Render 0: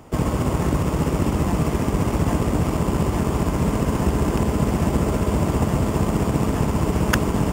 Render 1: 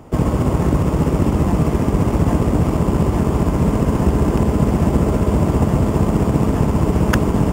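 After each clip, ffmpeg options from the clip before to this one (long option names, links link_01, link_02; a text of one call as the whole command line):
ffmpeg -i in.wav -af "tiltshelf=frequency=1200:gain=3.5,volume=1.5dB" out.wav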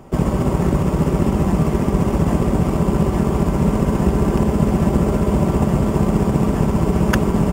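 ffmpeg -i in.wav -af "aecho=1:1:5.2:0.35,volume=-1dB" out.wav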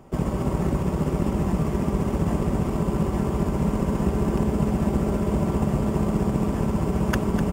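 ffmpeg -i in.wav -af "aecho=1:1:251:0.316,volume=-7dB" out.wav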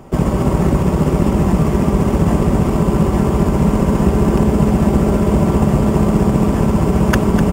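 ffmpeg -i in.wav -af "acontrast=77,volume=3dB" out.wav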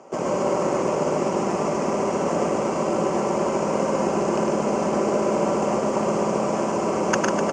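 ffmpeg -i in.wav -af "highpass=420,equalizer=frequency=550:width_type=q:width=4:gain=5,equalizer=frequency=1800:width_type=q:width=4:gain=-5,equalizer=frequency=3600:width_type=q:width=4:gain=-10,equalizer=frequency=6300:width_type=q:width=4:gain=8,lowpass=frequency=7200:width=0.5412,lowpass=frequency=7200:width=1.3066,aecho=1:1:105|145.8:0.708|0.501,volume=-3.5dB" out.wav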